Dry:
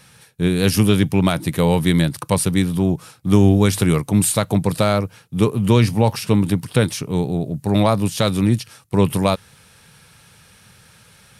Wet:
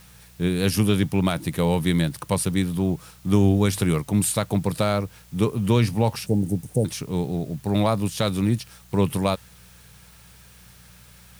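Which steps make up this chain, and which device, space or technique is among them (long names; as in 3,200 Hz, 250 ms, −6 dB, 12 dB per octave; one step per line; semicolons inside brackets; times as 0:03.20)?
0:06.26–0:06.85: Chebyshev band-stop filter 790–6,000 Hz, order 5
video cassette with head-switching buzz (hum with harmonics 60 Hz, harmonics 3, −48 dBFS; white noise bed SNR 31 dB)
level −5 dB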